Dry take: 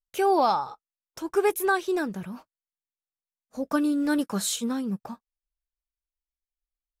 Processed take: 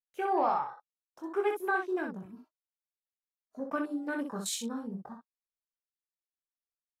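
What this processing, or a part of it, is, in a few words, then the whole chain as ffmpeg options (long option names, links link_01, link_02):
slapback doubling: -filter_complex "[0:a]afwtdn=0.0141,asplit=3[link_01][link_02][link_03];[link_02]adelay=22,volume=-5dB[link_04];[link_03]adelay=62,volume=-5dB[link_05];[link_01][link_04][link_05]amix=inputs=3:normalize=0,lowshelf=frequency=260:gain=-6,asettb=1/sr,asplit=3[link_06][link_07][link_08];[link_06]atrim=end=2.254[link_09];[link_07]atrim=start=2.25:end=3.6,asetpts=PTS-STARTPTS,afade=type=in:duration=0.004:curve=qsin,afade=type=out:start_time=1.346:duration=0.004:curve=qsin,aecho=1:1:3:0.78,atrim=end_sample=59535[link_10];[link_08]atrim=start=3.596[link_11];[link_09][link_10]acrossfade=duration=0.004:curve1=hsin:curve2=qsin[link_12];[link_12][link_11]acrossfade=duration=0.004:curve1=qsin:curve2=hsin,volume=-7dB"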